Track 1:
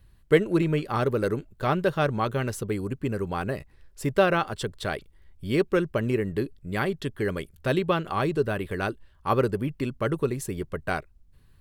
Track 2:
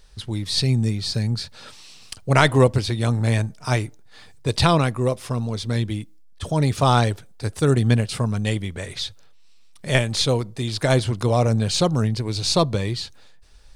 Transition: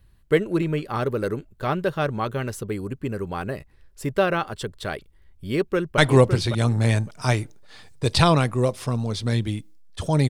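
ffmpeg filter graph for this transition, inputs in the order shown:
ffmpeg -i cue0.wav -i cue1.wav -filter_complex "[0:a]apad=whole_dur=10.29,atrim=end=10.29,atrim=end=5.982[link_01];[1:a]atrim=start=2.408:end=6.72[link_02];[link_01][link_02]acrossfade=duration=0.004:curve1=hsin:curve2=hsin,asplit=2[link_03][link_04];[link_04]afade=type=in:start_time=5.53:duration=0.01,afade=type=out:start_time=5.98:duration=0.01,aecho=0:1:560|1120|1680:0.446684|0.0670025|0.0100504[link_05];[link_03][link_05]amix=inputs=2:normalize=0" out.wav

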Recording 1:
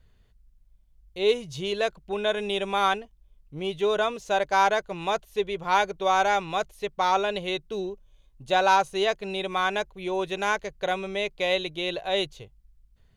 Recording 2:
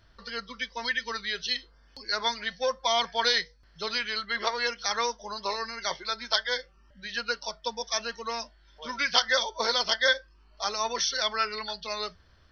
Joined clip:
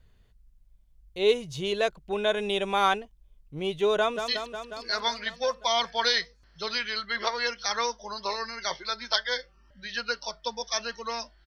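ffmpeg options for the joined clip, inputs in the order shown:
ffmpeg -i cue0.wav -i cue1.wav -filter_complex "[0:a]apad=whole_dur=11.46,atrim=end=11.46,atrim=end=4.282[link_01];[1:a]atrim=start=1.478:end=8.66[link_02];[link_01][link_02]acrossfade=duration=0.004:curve1=hsin:curve2=hsin,asplit=2[link_03][link_04];[link_04]afade=type=in:start_time=3.99:duration=0.01,afade=type=out:start_time=4.28:duration=0.01,aecho=0:1:180|360|540|720|900|1080|1260|1440|1620|1800|1980|2160:0.446684|0.335013|0.25126|0.188445|0.141333|0.106|0.0795001|0.0596251|0.0447188|0.0335391|0.0251543|0.0188657[link_05];[link_03][link_05]amix=inputs=2:normalize=0" out.wav

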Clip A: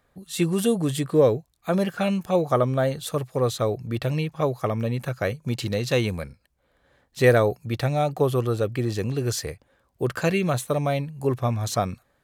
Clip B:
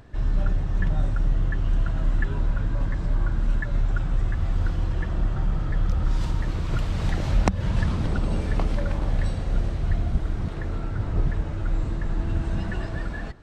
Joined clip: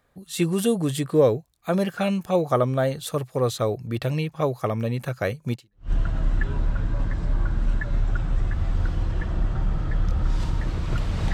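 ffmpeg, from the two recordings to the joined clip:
ffmpeg -i cue0.wav -i cue1.wav -filter_complex "[0:a]apad=whole_dur=11.33,atrim=end=11.33,atrim=end=5.91,asetpts=PTS-STARTPTS[link_01];[1:a]atrim=start=1.34:end=7.14,asetpts=PTS-STARTPTS[link_02];[link_01][link_02]acrossfade=duration=0.38:curve1=exp:curve2=exp" out.wav

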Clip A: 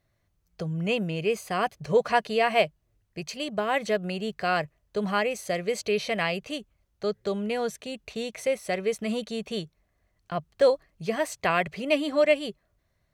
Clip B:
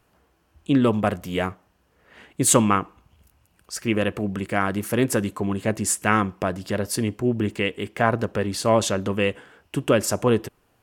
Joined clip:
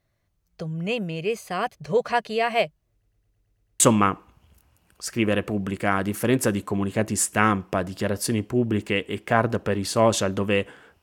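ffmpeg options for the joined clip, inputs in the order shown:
ffmpeg -i cue0.wav -i cue1.wav -filter_complex "[0:a]apad=whole_dur=11.02,atrim=end=11.02,asplit=8[link_01][link_02][link_03][link_04][link_05][link_06][link_07][link_08];[link_01]atrim=end=3.032[link_09];[link_02]atrim=start=2.918:end=3.032[link_10];[link_03]atrim=start=2.918:end=3.032[link_11];[link_04]atrim=start=2.918:end=3.032[link_12];[link_05]atrim=start=2.918:end=3.032[link_13];[link_06]atrim=start=2.918:end=3.032[link_14];[link_07]atrim=start=2.918:end=3.032[link_15];[link_08]atrim=start=2.918:end=3.032[link_16];[1:a]atrim=start=2.488:end=9.71[link_17];[link_09][link_10]acrossfade=duration=0.004:curve1=hsin:curve2=hsin[link_18];[link_18][link_11]acrossfade=duration=0.004:curve1=hsin:curve2=hsin[link_19];[link_19][link_12]acrossfade=duration=0.004:curve1=hsin:curve2=hsin[link_20];[link_20][link_13]acrossfade=duration=0.004:curve1=hsin:curve2=hsin[link_21];[link_21][link_14]acrossfade=duration=0.004:curve1=hsin:curve2=hsin[link_22];[link_22][link_15]acrossfade=duration=0.004:curve1=hsin:curve2=hsin[link_23];[link_23][link_16]acrossfade=duration=0.004:curve1=hsin:curve2=hsin[link_24];[link_24][link_17]acrossfade=duration=0.004:curve1=hsin:curve2=hsin" out.wav

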